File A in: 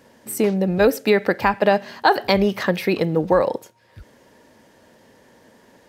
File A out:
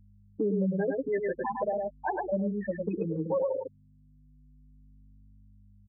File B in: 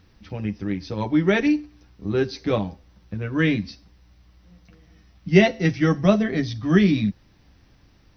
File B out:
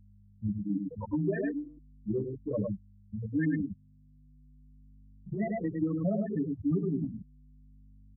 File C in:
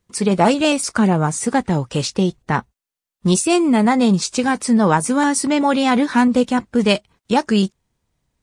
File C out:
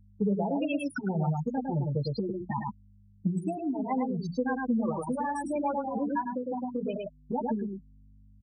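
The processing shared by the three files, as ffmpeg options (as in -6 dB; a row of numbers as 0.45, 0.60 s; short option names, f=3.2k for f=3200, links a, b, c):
-filter_complex "[0:a]bandreject=f=60:t=h:w=6,bandreject=f=120:t=h:w=6,bandreject=f=180:t=h:w=6,bandreject=f=240:t=h:w=6,bandreject=f=300:t=h:w=6,bandreject=f=360:t=h:w=6,alimiter=limit=-11dB:level=0:latency=1:release=21,acontrast=58,afftfilt=real='re*gte(hypot(re,im),0.631)':imag='im*gte(hypot(re,im),0.631)':win_size=1024:overlap=0.75,aecho=1:1:105:0.596,adynamicequalizer=threshold=0.0631:dfrequency=240:dqfactor=0.9:tfrequency=240:tqfactor=0.9:attack=5:release=100:ratio=0.375:range=2.5:mode=cutabove:tftype=bell,aeval=exprs='val(0)+0.00501*(sin(2*PI*50*n/s)+sin(2*PI*2*50*n/s)/2+sin(2*PI*3*50*n/s)/3+sin(2*PI*4*50*n/s)/4+sin(2*PI*5*50*n/s)/5)':c=same,highpass=45,highshelf=f=3.4k:g=-7.5,acompressor=threshold=-18dB:ratio=6,asplit=2[a][b];[b]adelay=6.7,afreqshift=-0.35[c];[a][c]amix=inputs=2:normalize=1,volume=-5.5dB"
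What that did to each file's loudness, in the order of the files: -11.5, -11.5, -14.0 LU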